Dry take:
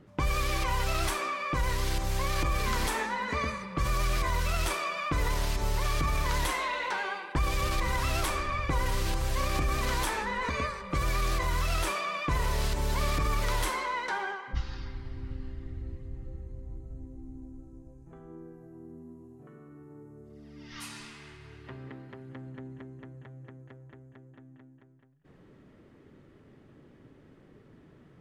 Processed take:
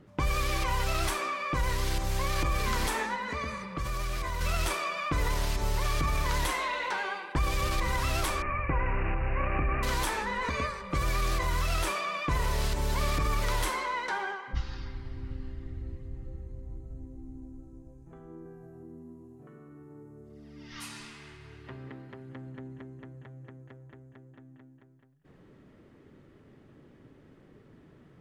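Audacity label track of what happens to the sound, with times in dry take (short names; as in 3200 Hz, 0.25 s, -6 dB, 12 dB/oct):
3.150000	4.410000	compressor 2:1, threshold -32 dBFS
8.420000	9.830000	careless resampling rate divided by 8×, down none, up filtered
18.430000	18.830000	doubler 23 ms -4.5 dB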